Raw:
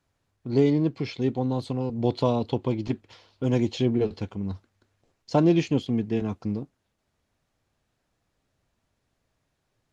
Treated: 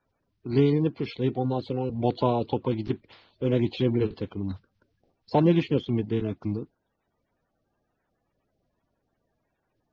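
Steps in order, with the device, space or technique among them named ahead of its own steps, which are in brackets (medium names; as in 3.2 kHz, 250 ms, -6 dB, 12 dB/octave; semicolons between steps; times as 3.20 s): clip after many re-uploads (low-pass 4.3 kHz 24 dB/octave; coarse spectral quantiser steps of 30 dB)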